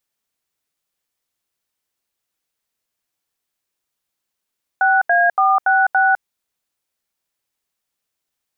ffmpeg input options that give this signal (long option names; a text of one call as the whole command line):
ffmpeg -f lavfi -i "aevalsrc='0.2*clip(min(mod(t,0.284),0.205-mod(t,0.284))/0.002,0,1)*(eq(floor(t/0.284),0)*(sin(2*PI*770*mod(t,0.284))+sin(2*PI*1477*mod(t,0.284)))+eq(floor(t/0.284),1)*(sin(2*PI*697*mod(t,0.284))+sin(2*PI*1633*mod(t,0.284)))+eq(floor(t/0.284),2)*(sin(2*PI*770*mod(t,0.284))+sin(2*PI*1209*mod(t,0.284)))+eq(floor(t/0.284),3)*(sin(2*PI*770*mod(t,0.284))+sin(2*PI*1477*mod(t,0.284)))+eq(floor(t/0.284),4)*(sin(2*PI*770*mod(t,0.284))+sin(2*PI*1477*mod(t,0.284))))':duration=1.42:sample_rate=44100" out.wav